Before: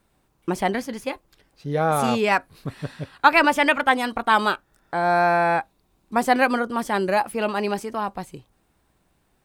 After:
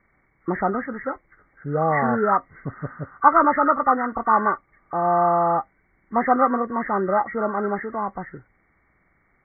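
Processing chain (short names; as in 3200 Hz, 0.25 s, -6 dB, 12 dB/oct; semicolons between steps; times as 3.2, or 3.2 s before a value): nonlinear frequency compression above 1100 Hz 4:1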